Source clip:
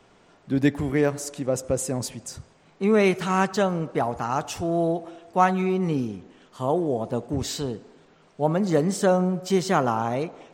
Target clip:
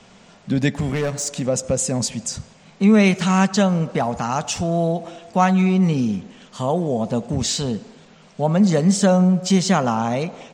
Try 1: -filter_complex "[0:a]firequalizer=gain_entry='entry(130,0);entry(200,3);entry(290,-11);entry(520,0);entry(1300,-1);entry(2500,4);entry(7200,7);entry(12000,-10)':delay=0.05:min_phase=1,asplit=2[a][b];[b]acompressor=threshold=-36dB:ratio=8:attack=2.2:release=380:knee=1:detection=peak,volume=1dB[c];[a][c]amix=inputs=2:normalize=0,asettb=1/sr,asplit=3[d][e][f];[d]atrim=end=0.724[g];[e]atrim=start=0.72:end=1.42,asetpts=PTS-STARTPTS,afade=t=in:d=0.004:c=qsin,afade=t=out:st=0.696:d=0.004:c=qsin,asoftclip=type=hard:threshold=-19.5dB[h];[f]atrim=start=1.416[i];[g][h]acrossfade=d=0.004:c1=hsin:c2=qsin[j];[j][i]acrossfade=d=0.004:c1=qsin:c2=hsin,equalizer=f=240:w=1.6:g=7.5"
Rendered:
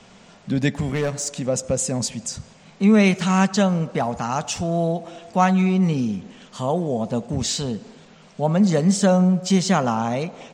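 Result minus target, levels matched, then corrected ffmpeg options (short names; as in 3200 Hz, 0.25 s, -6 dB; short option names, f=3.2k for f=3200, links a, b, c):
compressor: peak gain reduction +7.5 dB
-filter_complex "[0:a]firequalizer=gain_entry='entry(130,0);entry(200,3);entry(290,-11);entry(520,0);entry(1300,-1);entry(2500,4);entry(7200,7);entry(12000,-10)':delay=0.05:min_phase=1,asplit=2[a][b];[b]acompressor=threshold=-27.5dB:ratio=8:attack=2.2:release=380:knee=1:detection=peak,volume=1dB[c];[a][c]amix=inputs=2:normalize=0,asettb=1/sr,asplit=3[d][e][f];[d]atrim=end=0.724[g];[e]atrim=start=0.72:end=1.42,asetpts=PTS-STARTPTS,afade=t=in:d=0.004:c=qsin,afade=t=out:st=0.696:d=0.004:c=qsin,asoftclip=type=hard:threshold=-19.5dB[h];[f]atrim=start=1.416[i];[g][h]acrossfade=d=0.004:c1=hsin:c2=qsin[j];[j][i]acrossfade=d=0.004:c1=qsin:c2=hsin,equalizer=f=240:w=1.6:g=7.5"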